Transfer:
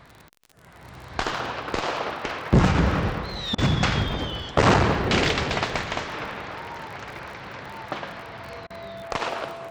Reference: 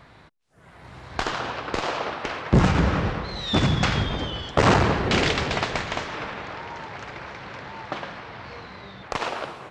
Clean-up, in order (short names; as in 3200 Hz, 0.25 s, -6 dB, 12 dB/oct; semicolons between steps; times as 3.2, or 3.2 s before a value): de-click; notch 670 Hz, Q 30; interpolate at 3.55/8.67, 31 ms